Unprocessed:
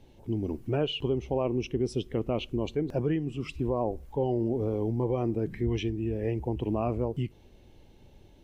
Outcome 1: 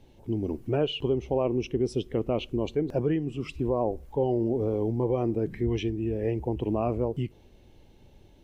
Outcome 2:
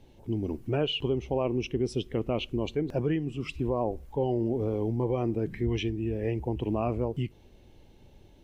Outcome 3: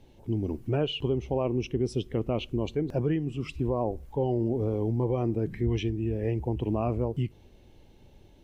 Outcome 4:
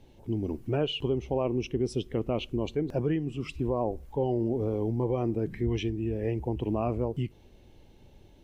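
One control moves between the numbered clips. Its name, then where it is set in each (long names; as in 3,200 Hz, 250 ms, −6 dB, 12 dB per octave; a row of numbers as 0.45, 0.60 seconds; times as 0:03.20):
dynamic equaliser, frequency: 480, 2,600, 100, 9,400 Hertz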